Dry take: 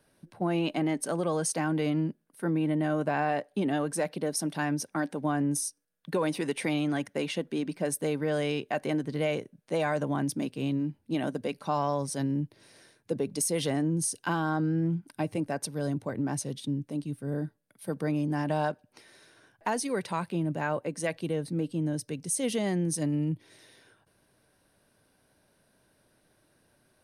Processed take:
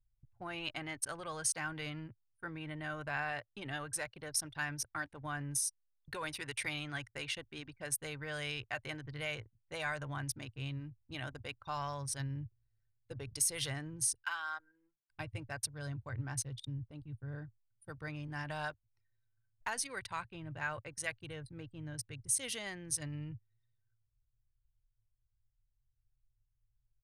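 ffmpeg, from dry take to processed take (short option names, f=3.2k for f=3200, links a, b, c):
-filter_complex "[0:a]asplit=3[a][b][c];[a]afade=t=out:st=14.22:d=0.02[d];[b]highpass=1k,afade=t=in:st=14.22:d=0.02,afade=t=out:st=15.1:d=0.02[e];[c]afade=t=in:st=15.1:d=0.02[f];[d][e][f]amix=inputs=3:normalize=0,anlmdn=0.398,firequalizer=gain_entry='entry(110,0);entry(170,-30);entry(1400,-10)':delay=0.05:min_phase=1,volume=8dB"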